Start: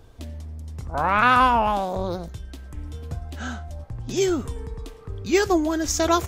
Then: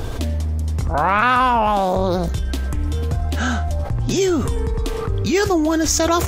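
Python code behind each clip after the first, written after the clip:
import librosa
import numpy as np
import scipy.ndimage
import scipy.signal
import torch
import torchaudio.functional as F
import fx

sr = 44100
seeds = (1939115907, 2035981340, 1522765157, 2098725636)

y = fx.env_flatten(x, sr, amount_pct=70)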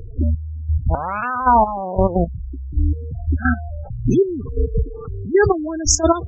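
y = fx.step_gate(x, sr, bpm=174, pattern='..xx....x.x....', floor_db=-12.0, edge_ms=4.5)
y = fx.spec_gate(y, sr, threshold_db=-15, keep='strong')
y = y * librosa.db_to_amplitude(5.0)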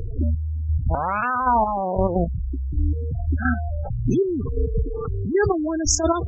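y = fx.env_flatten(x, sr, amount_pct=50)
y = y * librosa.db_to_amplitude(-6.0)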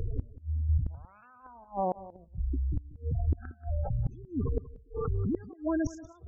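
y = fx.gate_flip(x, sr, shuts_db=-15.0, range_db=-30)
y = y + 10.0 ** (-17.0 / 20.0) * np.pad(y, (int(183 * sr / 1000.0), 0))[:len(y)]
y = y * librosa.db_to_amplitude(-4.0)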